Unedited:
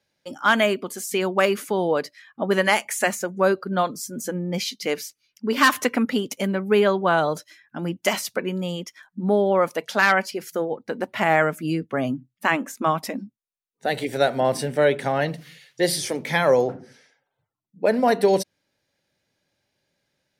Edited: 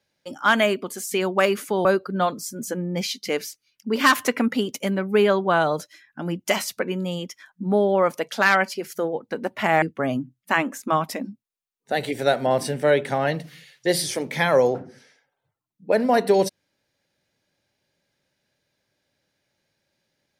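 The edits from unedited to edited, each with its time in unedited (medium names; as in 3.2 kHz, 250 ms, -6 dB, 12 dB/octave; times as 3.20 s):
1.85–3.42 s: delete
11.39–11.76 s: delete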